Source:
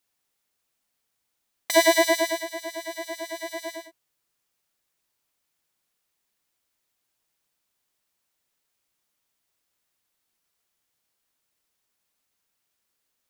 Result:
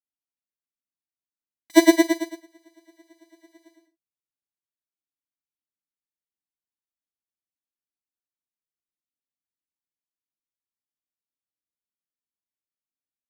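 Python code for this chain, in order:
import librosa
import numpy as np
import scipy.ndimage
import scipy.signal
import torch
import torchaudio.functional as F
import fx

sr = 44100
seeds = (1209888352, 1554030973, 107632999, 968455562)

y = fx.low_shelf_res(x, sr, hz=390.0, db=7.5, q=3.0)
y = fx.room_early_taps(y, sr, ms=(42, 57), db=(-9.5, -15.5))
y = fx.upward_expand(y, sr, threshold_db=-30.0, expansion=2.5)
y = F.gain(torch.from_numpy(y), 2.0).numpy()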